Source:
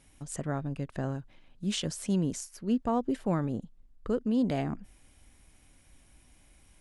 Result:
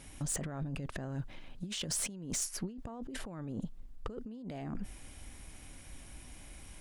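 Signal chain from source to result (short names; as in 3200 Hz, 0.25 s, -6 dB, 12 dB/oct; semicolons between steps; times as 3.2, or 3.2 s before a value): negative-ratio compressor -40 dBFS, ratio -1; soft clip -29.5 dBFS, distortion -15 dB; gain +1.5 dB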